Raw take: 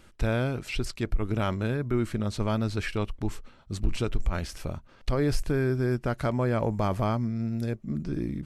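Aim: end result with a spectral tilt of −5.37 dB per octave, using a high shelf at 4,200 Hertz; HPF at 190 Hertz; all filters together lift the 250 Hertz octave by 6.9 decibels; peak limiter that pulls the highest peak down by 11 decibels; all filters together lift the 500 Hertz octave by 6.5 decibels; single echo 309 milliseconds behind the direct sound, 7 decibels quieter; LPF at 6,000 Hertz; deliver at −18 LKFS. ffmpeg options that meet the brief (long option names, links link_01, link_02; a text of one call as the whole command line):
ffmpeg -i in.wav -af "highpass=190,lowpass=6000,equalizer=frequency=250:width_type=o:gain=8.5,equalizer=frequency=500:width_type=o:gain=5.5,highshelf=frequency=4200:gain=8.5,alimiter=limit=-19.5dB:level=0:latency=1,aecho=1:1:309:0.447,volume=12dB" out.wav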